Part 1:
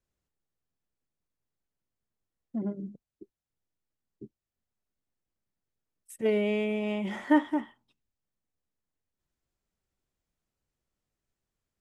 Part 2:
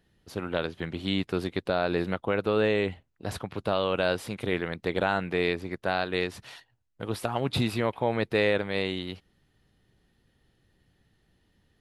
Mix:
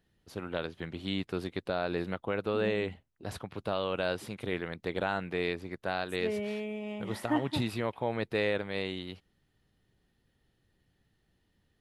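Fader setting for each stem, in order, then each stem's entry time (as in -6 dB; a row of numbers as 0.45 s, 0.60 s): -7.5 dB, -5.5 dB; 0.00 s, 0.00 s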